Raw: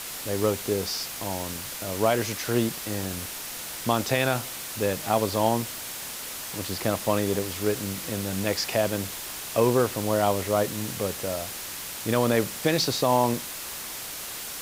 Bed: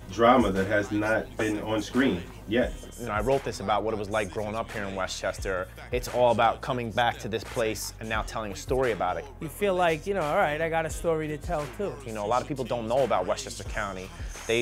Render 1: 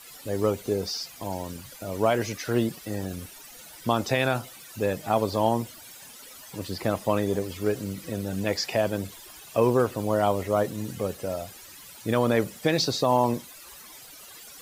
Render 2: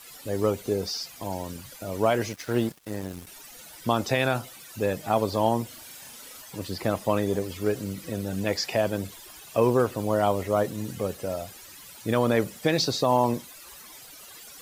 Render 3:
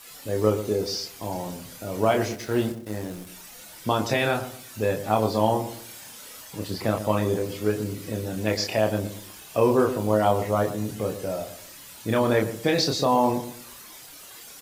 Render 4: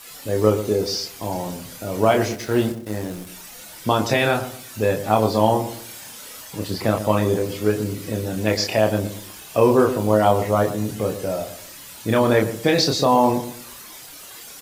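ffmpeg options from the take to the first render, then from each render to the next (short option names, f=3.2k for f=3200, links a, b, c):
-af "afftdn=nr=15:nf=-36"
-filter_complex "[0:a]asettb=1/sr,asplit=3[a][b][c];[a]atrim=end=2.284[d];[b]atrim=start=2.28:end=3.27,asetpts=PTS-STARTPTS,afade=t=in:d=0.004:c=qsin,afade=t=out:st=0.986:d=0.004:c=qsin,aeval=exprs='sgn(val(0))*max(abs(val(0))-0.00891,0)':c=same[e];[c]atrim=start=3.266[f];[d][e]acrossfade=d=0.004:c1=hsin:c2=qsin[g];[g][f]acrossfade=d=0.004:c1=qsin:c2=hsin,asettb=1/sr,asplit=3[h][i][j];[h]atrim=end=5.674[k];[i]atrim=start=5.67:end=6.42,asetpts=PTS-STARTPTS,afade=t=in:d=0.004:c=qsin,afade=t=out:st=0.746:d=0.004:c=qsin,asplit=2[l][m];[m]adelay=38,volume=-4dB[n];[l][n]amix=inputs=2:normalize=0,atrim=end_sample=33075[o];[j]atrim=start=6.416[p];[k][o]acrossfade=d=0.004:c1=hsin:c2=qsin[q];[q][p]acrossfade=d=0.004:c1=qsin:c2=hsin"
-filter_complex "[0:a]asplit=2[a][b];[b]adelay=28,volume=-4dB[c];[a][c]amix=inputs=2:normalize=0,asplit=2[d][e];[e]adelay=117,lowpass=f=1k:p=1,volume=-10dB,asplit=2[f][g];[g]adelay=117,lowpass=f=1k:p=1,volume=0.34,asplit=2[h][i];[i]adelay=117,lowpass=f=1k:p=1,volume=0.34,asplit=2[j][k];[k]adelay=117,lowpass=f=1k:p=1,volume=0.34[l];[d][f][h][j][l]amix=inputs=5:normalize=0"
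-af "volume=4.5dB"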